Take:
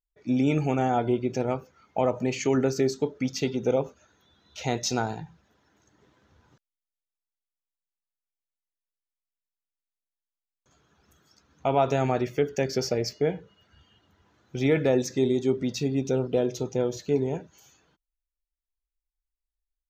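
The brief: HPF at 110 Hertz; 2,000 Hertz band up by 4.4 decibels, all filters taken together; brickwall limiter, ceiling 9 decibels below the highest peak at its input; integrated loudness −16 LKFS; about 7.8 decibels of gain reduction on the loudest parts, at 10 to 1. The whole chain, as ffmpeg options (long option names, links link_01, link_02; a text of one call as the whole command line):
ffmpeg -i in.wav -af "highpass=110,equalizer=frequency=2000:width_type=o:gain=5.5,acompressor=threshold=-26dB:ratio=10,volume=19dB,alimiter=limit=-5dB:level=0:latency=1" out.wav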